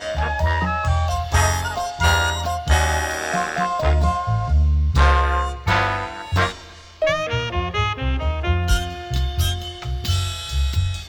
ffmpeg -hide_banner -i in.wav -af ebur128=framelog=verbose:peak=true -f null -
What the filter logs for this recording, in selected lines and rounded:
Integrated loudness:
  I:         -21.0 LUFS
  Threshold: -31.1 LUFS
Loudness range:
  LRA:         3.4 LU
  Threshold: -40.9 LUFS
  LRA low:   -23.0 LUFS
  LRA high:  -19.6 LUFS
True peak:
  Peak:       -5.1 dBFS